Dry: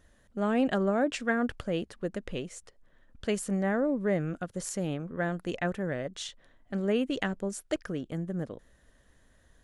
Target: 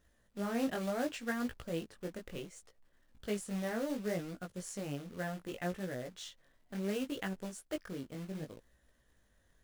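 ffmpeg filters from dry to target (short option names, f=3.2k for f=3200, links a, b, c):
-af "acrusher=bits=3:mode=log:mix=0:aa=0.000001,flanger=delay=16:depth=6.4:speed=0.68,volume=-5.5dB"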